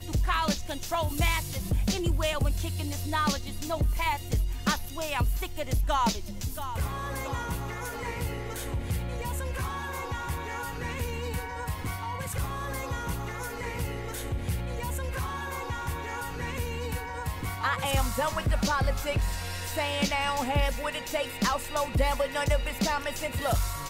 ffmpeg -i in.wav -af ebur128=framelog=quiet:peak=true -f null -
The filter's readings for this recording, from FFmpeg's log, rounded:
Integrated loudness:
  I:         -30.6 LUFS
  Threshold: -40.6 LUFS
Loudness range:
  LRA:         5.3 LU
  Threshold: -50.8 LUFS
  LRA low:   -33.8 LUFS
  LRA high:  -28.5 LUFS
True peak:
  Peak:      -11.9 dBFS